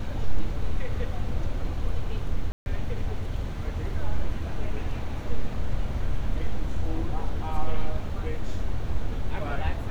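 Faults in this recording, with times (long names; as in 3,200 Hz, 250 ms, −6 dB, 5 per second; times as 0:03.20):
0:02.52–0:02.66: drop-out 141 ms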